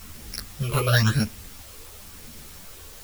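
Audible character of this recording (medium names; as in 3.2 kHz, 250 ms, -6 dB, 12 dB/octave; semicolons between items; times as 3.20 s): a buzz of ramps at a fixed pitch in blocks of 8 samples; phasing stages 8, 0.97 Hz, lowest notch 210–1200 Hz; a quantiser's noise floor 8-bit, dither triangular; a shimmering, thickened sound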